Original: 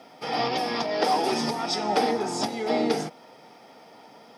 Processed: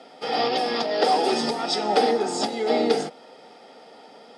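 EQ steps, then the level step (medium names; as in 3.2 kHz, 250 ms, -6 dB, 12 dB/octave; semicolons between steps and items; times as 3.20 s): cabinet simulation 310–8400 Hz, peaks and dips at 320 Hz -5 dB, 650 Hz -4 dB, 1 kHz -9 dB, 5.9 kHz -10 dB; peaking EQ 2 kHz -6 dB 1.7 oct; band-stop 2.3 kHz, Q 23; +8.0 dB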